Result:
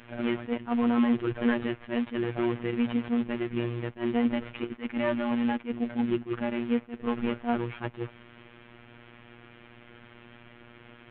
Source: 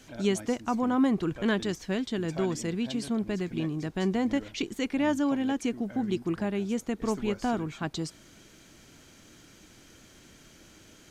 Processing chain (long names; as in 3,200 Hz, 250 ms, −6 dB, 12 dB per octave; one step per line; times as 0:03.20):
variable-slope delta modulation 16 kbit/s
in parallel at −1 dB: brickwall limiter −23 dBFS, peak gain reduction 8.5 dB
on the sum: phases set to zero 119 Hz
level that may rise only so fast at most 270 dB per second